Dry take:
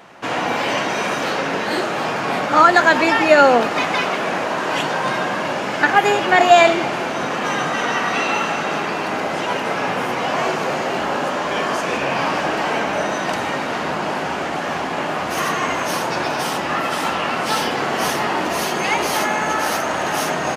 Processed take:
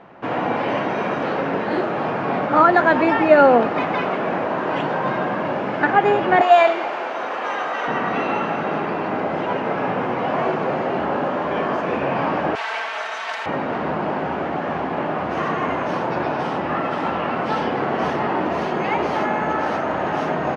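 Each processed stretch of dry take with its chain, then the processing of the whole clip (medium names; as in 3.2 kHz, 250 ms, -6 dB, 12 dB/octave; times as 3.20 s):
6.41–7.88 s: high-pass 550 Hz + treble shelf 5.5 kHz +9 dB
12.55–13.46 s: comb filter that takes the minimum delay 4.5 ms + high-pass 690 Hz + tilt EQ +4.5 dB/octave
whole clip: low-pass 3 kHz 12 dB/octave; tilt shelf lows +5.5 dB, about 1.4 kHz; trim -3.5 dB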